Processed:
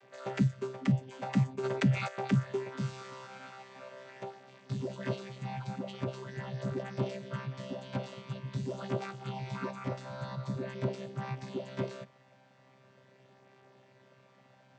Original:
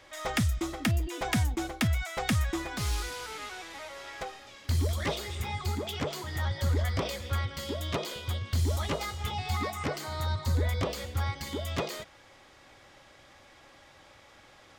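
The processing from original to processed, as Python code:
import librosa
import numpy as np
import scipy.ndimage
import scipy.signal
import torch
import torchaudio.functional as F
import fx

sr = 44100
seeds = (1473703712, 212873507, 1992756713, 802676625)

y = fx.chord_vocoder(x, sr, chord='bare fifth', root=48)
y = fx.env_flatten(y, sr, amount_pct=50, at=(1.63, 2.07), fade=0.02)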